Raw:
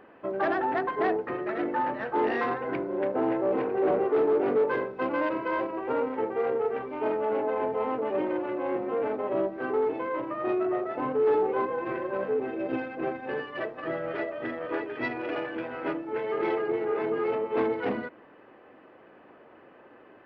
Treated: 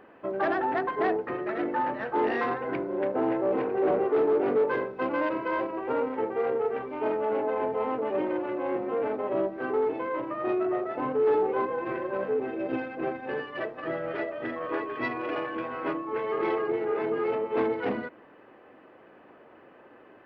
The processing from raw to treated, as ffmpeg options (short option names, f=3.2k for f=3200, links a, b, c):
-filter_complex "[0:a]asettb=1/sr,asplit=3[a][b][c];[a]atrim=end=14.564[d];[b]atrim=start=14.56:end=16.67,asetpts=PTS-STARTPTS,afade=t=in:d=0.004:c=qsin,afade=t=out:st=2.106:d=0.004:c=qsin,aeval=exprs='val(0)+0.0141*sin(2*PI*1100*n/s)':c=same[e];[c]atrim=start=16.666[f];[d][e]acrossfade=d=0.004:c1=hsin:c2=qsin[g];[g][f]acrossfade=d=0.004:c1=qsin:c2=hsin"